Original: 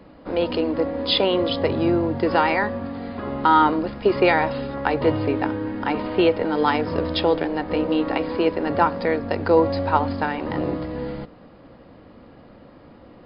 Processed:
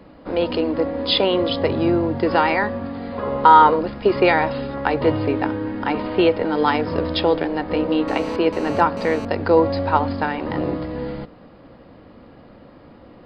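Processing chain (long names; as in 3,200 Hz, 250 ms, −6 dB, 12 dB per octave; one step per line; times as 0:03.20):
0:03.12–0:03.81: thirty-one-band graphic EQ 315 Hz −7 dB, 500 Hz +12 dB, 1,000 Hz +7 dB
0:08.08–0:09.25: phone interference −35 dBFS
level +1.5 dB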